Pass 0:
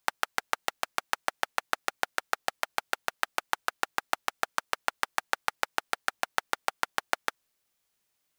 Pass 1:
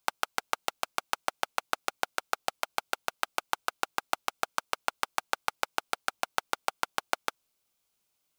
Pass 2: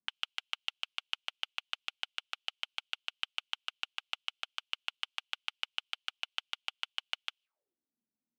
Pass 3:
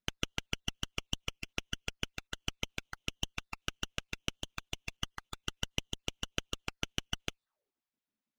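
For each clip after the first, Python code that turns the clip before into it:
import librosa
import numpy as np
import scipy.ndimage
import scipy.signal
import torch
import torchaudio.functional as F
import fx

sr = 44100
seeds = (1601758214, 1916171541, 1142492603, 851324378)

y1 = fx.peak_eq(x, sr, hz=1800.0, db=-9.5, octaves=0.27)
y2 = fx.auto_wah(y1, sr, base_hz=220.0, top_hz=3000.0, q=6.0, full_db=-40.5, direction='up')
y2 = F.gain(torch.from_numpy(y2), 6.0).numpy()
y3 = fx.spec_dropout(y2, sr, seeds[0], share_pct=35)
y3 = fx.running_max(y3, sr, window=5)
y3 = F.gain(torch.from_numpy(y3), 3.0).numpy()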